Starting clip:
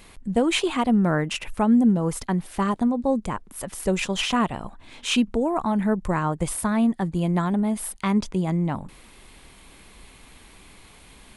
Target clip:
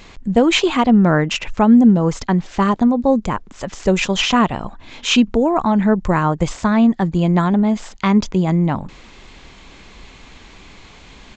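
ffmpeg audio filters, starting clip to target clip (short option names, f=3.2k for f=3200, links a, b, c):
-af "aresample=16000,aresample=44100,volume=7.5dB"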